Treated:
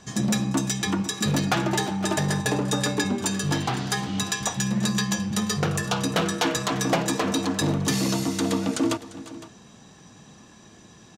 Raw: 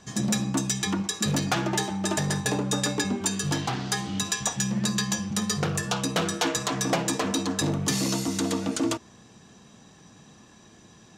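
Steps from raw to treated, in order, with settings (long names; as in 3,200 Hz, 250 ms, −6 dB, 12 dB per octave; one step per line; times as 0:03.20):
dynamic equaliser 7,100 Hz, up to −4 dB, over −40 dBFS, Q 0.87
on a send: multi-tap delay 347/510 ms −18/−17 dB
on the sum: level +2.5 dB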